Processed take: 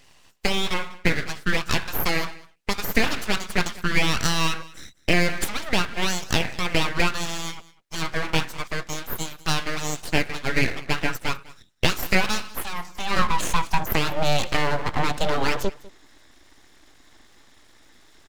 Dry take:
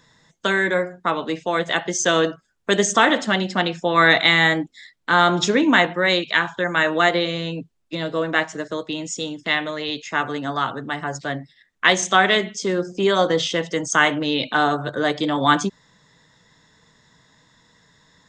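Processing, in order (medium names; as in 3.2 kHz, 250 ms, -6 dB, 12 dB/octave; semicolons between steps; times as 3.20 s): 9.99–10.51 s: transient shaper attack 0 dB, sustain -7 dB; compression 6:1, threshold -21 dBFS, peak gain reduction 11 dB; high-pass sweep 830 Hz -> 110 Hz, 12.62–16.15 s; full-wave rectifier; on a send: delay 199 ms -21 dB; on the sum: trim +3 dB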